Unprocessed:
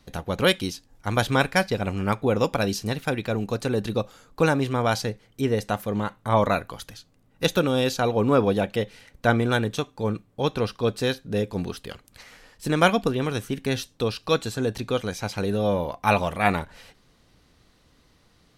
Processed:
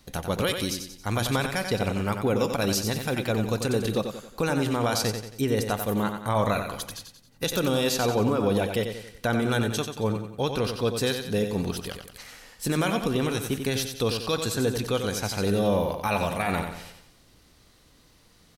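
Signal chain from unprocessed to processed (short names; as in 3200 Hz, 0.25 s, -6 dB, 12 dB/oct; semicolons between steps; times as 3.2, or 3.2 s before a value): high shelf 6100 Hz +9.5 dB; limiter -15.5 dBFS, peak gain reduction 12 dB; feedback echo 91 ms, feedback 44%, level -7 dB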